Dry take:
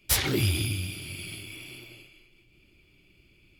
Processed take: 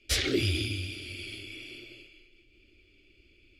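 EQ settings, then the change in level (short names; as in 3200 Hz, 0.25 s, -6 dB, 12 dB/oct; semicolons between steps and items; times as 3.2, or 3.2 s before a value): LPF 5800 Hz 12 dB/oct; fixed phaser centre 380 Hz, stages 4; +1.5 dB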